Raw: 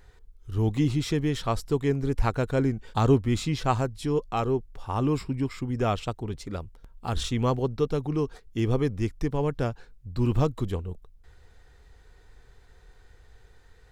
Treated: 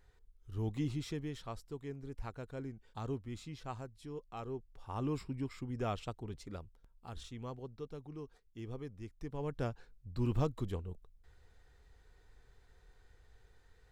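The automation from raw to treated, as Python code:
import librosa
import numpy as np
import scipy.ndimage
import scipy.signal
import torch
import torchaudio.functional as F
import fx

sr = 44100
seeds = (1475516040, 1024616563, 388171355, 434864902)

y = fx.gain(x, sr, db=fx.line((0.94, -12.0), (1.7, -19.0), (4.2, -19.0), (5.06, -11.0), (6.52, -11.0), (7.24, -19.5), (9.08, -19.5), (9.63, -9.0)))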